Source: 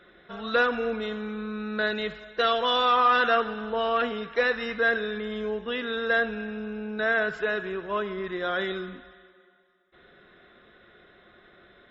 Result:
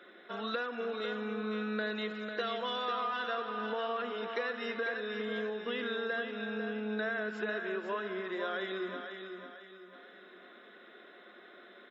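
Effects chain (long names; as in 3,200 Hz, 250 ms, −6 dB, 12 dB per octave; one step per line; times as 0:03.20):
Butterworth high-pass 210 Hz 48 dB per octave
downward compressor 6 to 1, threshold −34 dBFS, peak gain reduction 15.5 dB
repeating echo 497 ms, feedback 41%, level −7 dB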